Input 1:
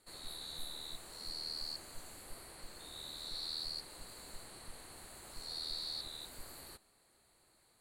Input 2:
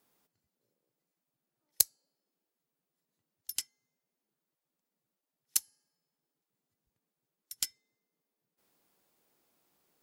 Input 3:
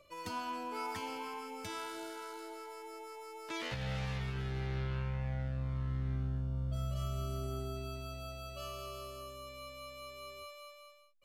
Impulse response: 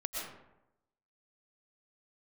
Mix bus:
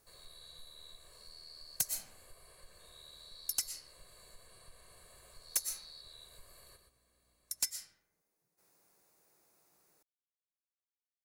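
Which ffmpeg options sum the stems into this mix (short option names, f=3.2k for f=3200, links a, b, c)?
-filter_complex "[0:a]acompressor=threshold=-48dB:ratio=2,aecho=1:1:1.8:0.83,aeval=exprs='val(0)+0.000316*(sin(2*PI*60*n/s)+sin(2*PI*2*60*n/s)/2+sin(2*PI*3*60*n/s)/3+sin(2*PI*4*60*n/s)/4+sin(2*PI*5*60*n/s)/5)':c=same,volume=-9dB,asplit=2[a][b];[b]volume=-7.5dB[c];[1:a]equalizer=f=250:t=o:w=0.33:g=-11,equalizer=f=3.15k:t=o:w=0.33:g=-10,equalizer=f=6.3k:t=o:w=0.33:g=4,equalizer=f=10k:t=o:w=0.33:g=5,volume=12.5dB,asoftclip=hard,volume=-12.5dB,volume=0.5dB,asplit=2[d][e];[e]volume=-8.5dB[f];[3:a]atrim=start_sample=2205[g];[f][g]afir=irnorm=-1:irlink=0[h];[c]aecho=0:1:120:1[i];[a][d][h][i]amix=inputs=4:normalize=0,asoftclip=type=hard:threshold=-24.5dB"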